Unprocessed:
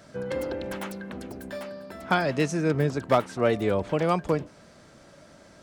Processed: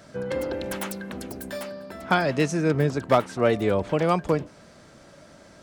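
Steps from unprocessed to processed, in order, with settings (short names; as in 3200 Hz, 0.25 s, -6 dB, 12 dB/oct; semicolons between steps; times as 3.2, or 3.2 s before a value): 0.53–1.71 high shelf 5200 Hz +9.5 dB; gain +2 dB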